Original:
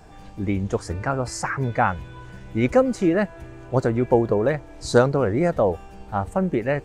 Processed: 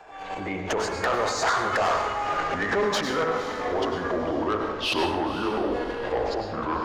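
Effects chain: gliding pitch shift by -10 st starting unshifted; recorder AGC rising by 46 dB/s; bell 6800 Hz +7.5 dB 0.24 oct; de-hum 54.4 Hz, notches 40; transient shaper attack -4 dB, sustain +11 dB; three-band isolator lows -24 dB, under 440 Hz, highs -20 dB, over 3500 Hz; soft clip -23 dBFS, distortion -10 dB; diffused feedback echo 0.509 s, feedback 41%, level -12 dB; plate-style reverb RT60 0.8 s, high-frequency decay 0.75×, pre-delay 85 ms, DRR 5.5 dB; gain +4 dB

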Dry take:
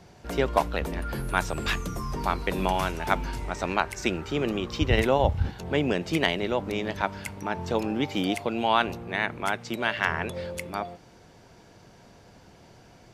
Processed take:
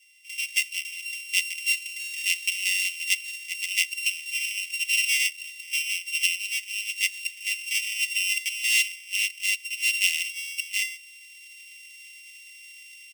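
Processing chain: sample sorter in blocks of 16 samples; comb 4 ms, depth 97%; AGC; rippled Chebyshev high-pass 2000 Hz, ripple 6 dB; gain -2.5 dB

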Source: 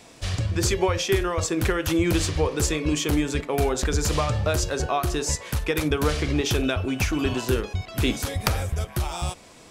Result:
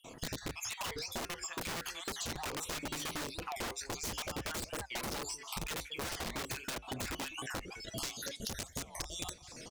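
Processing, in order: random spectral dropouts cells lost 56%; soft clip -20.5 dBFS, distortion -14 dB; flange 0.21 Hz, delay 8.1 ms, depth 1.5 ms, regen -68%; sample leveller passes 1; high shelf 3100 Hz -3.5 dB; echo 0.196 s -22.5 dB; wrapped overs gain 27 dB; bell 5900 Hz +3 dB 1.5 oct, from 7.72 s +10.5 dB; compressor 6:1, threshold -39 dBFS, peak gain reduction 15 dB; record warp 45 rpm, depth 250 cents; gain +1 dB

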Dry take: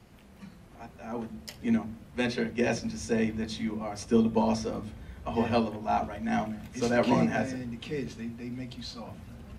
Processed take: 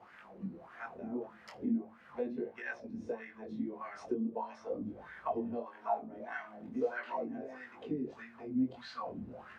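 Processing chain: 5.63–7.9 low shelf 160 Hz -11 dB; compressor 8:1, threshold -40 dBFS, peak gain reduction 21.5 dB; chorus 0.39 Hz, delay 19.5 ms, depth 4.9 ms; wah 1.6 Hz 250–1700 Hz, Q 4.3; gain +17 dB

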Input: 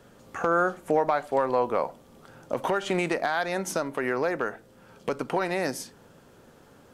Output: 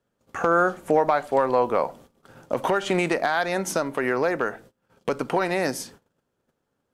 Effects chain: gate -49 dBFS, range -26 dB; gain +3.5 dB

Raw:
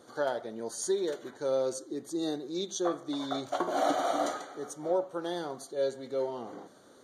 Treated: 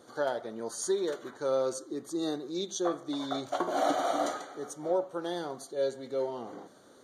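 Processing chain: 0.44–2.51 bell 1200 Hz +7 dB 0.52 oct

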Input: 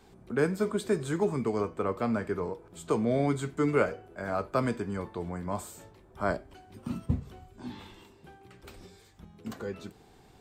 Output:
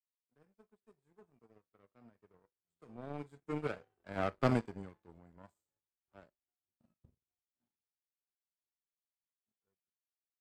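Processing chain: Doppler pass-by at 4.36, 10 m/s, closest 3.5 m; harmonic-percussive split harmonic +9 dB; power-law curve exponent 2; gain -1.5 dB

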